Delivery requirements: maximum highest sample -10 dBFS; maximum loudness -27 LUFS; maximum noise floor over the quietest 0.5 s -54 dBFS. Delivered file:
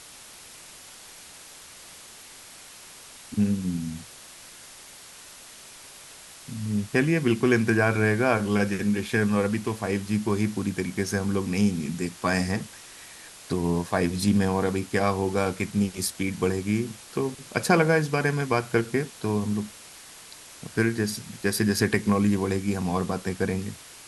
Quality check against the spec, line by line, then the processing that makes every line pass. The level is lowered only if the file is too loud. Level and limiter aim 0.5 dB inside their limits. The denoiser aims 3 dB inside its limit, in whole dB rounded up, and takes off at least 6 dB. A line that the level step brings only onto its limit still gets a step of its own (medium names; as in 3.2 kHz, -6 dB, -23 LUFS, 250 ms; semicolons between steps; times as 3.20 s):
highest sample -6.0 dBFS: fail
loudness -25.5 LUFS: fail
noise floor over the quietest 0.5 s -46 dBFS: fail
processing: noise reduction 9 dB, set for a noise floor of -46 dBFS; trim -2 dB; peak limiter -10.5 dBFS